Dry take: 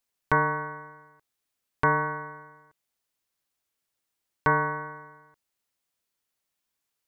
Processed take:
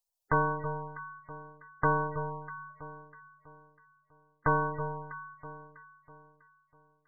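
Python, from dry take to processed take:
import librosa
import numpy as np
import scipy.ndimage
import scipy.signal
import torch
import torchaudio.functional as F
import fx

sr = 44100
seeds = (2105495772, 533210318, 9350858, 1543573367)

y = np.where(x < 0.0, 10.0 ** (-3.0 / 20.0) * x, x)
y = fx.env_phaser(y, sr, low_hz=290.0, high_hz=2600.0, full_db=-22.5)
y = fx.echo_alternate(y, sr, ms=324, hz=1200.0, feedback_pct=58, wet_db=-8.5)
y = fx.spec_gate(y, sr, threshold_db=-15, keep='strong')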